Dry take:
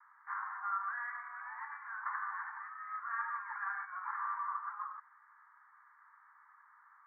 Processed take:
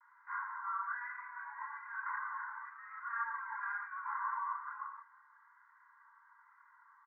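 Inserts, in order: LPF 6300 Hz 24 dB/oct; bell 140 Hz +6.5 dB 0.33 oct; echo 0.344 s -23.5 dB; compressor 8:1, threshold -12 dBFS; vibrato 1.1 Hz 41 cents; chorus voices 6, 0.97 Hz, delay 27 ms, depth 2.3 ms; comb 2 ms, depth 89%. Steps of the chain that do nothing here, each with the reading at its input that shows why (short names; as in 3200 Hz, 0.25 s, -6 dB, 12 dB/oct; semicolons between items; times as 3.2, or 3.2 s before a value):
LPF 6300 Hz: input band ends at 2200 Hz; bell 140 Hz: input band starts at 720 Hz; compressor, threshold -12 dBFS: input peak -26.0 dBFS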